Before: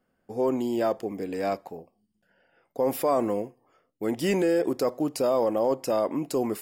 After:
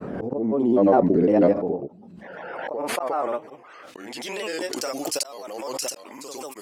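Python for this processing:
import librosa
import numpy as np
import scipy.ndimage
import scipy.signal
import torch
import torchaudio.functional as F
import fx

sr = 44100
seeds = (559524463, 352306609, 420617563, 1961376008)

p1 = fx.granulator(x, sr, seeds[0], grain_ms=100.0, per_s=20.0, spray_ms=100.0, spread_st=3)
p2 = fx.rider(p1, sr, range_db=3, speed_s=2.0)
p3 = p1 + (p2 * librosa.db_to_amplitude(0.0))
p4 = fx.auto_swell(p3, sr, attack_ms=755.0)
p5 = fx.filter_sweep_bandpass(p4, sr, from_hz=290.0, to_hz=6900.0, start_s=1.63, end_s=4.97, q=0.71)
p6 = fx.pre_swell(p5, sr, db_per_s=24.0)
y = p6 * librosa.db_to_amplitude(7.5)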